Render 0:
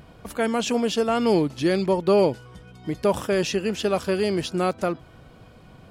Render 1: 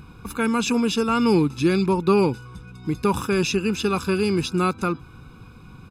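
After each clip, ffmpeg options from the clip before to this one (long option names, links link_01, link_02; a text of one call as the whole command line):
ffmpeg -i in.wav -af "aecho=1:1:0.8:0.94" out.wav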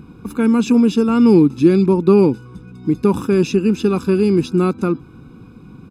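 ffmpeg -i in.wav -af "equalizer=frequency=270:width=0.63:gain=14,volume=-4dB" out.wav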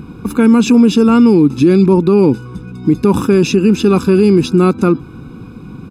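ffmpeg -i in.wav -af "alimiter=level_in=9.5dB:limit=-1dB:release=50:level=0:latency=1,volume=-1dB" out.wav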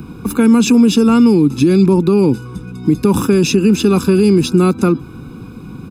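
ffmpeg -i in.wav -filter_complex "[0:a]acrossover=split=240|3000[link_01][link_02][link_03];[link_02]acompressor=threshold=-12dB:ratio=6[link_04];[link_01][link_04][link_03]amix=inputs=3:normalize=0,acrossover=split=350[link_05][link_06];[link_06]crystalizer=i=1:c=0[link_07];[link_05][link_07]amix=inputs=2:normalize=0" out.wav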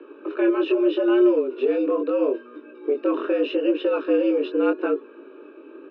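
ffmpeg -i in.wav -af "flanger=delay=17:depth=7.2:speed=0.79,aeval=exprs='0.75*(cos(1*acos(clip(val(0)/0.75,-1,1)))-cos(1*PI/2))+0.0106*(cos(6*acos(clip(val(0)/0.75,-1,1)))-cos(6*PI/2))':channel_layout=same,highpass=frequency=190:width_type=q:width=0.5412,highpass=frequency=190:width_type=q:width=1.307,lowpass=frequency=3000:width_type=q:width=0.5176,lowpass=frequency=3000:width_type=q:width=0.7071,lowpass=frequency=3000:width_type=q:width=1.932,afreqshift=120,volume=-6dB" out.wav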